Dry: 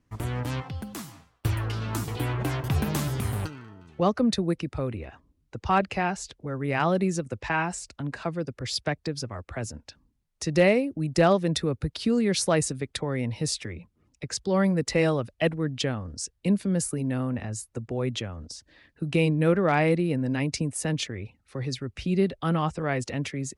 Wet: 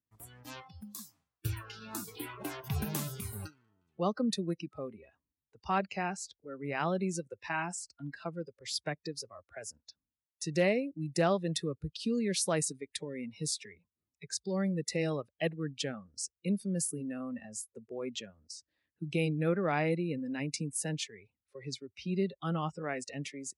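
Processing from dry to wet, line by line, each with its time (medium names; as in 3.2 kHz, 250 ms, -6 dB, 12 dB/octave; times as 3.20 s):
12.66–15.11 s: dynamic bell 1.1 kHz, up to -6 dB, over -39 dBFS, Q 0.83
whole clip: spectral noise reduction 18 dB; high-pass 59 Hz; treble shelf 8.4 kHz +10 dB; trim -8 dB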